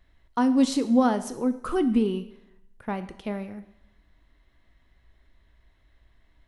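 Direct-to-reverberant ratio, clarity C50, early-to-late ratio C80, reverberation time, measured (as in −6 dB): 11.0 dB, 13.5 dB, 16.0 dB, 0.80 s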